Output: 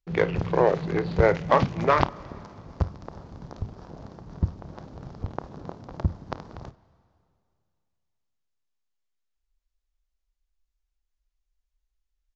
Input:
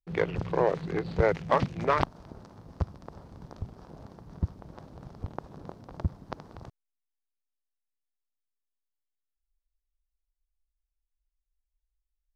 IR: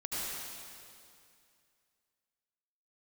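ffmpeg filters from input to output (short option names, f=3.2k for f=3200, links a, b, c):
-filter_complex "[0:a]aecho=1:1:30|53:0.168|0.141,asplit=2[a][b];[1:a]atrim=start_sample=2205,adelay=97[c];[b][c]afir=irnorm=-1:irlink=0,volume=-27dB[d];[a][d]amix=inputs=2:normalize=0,aresample=16000,aresample=44100,volume=4.5dB"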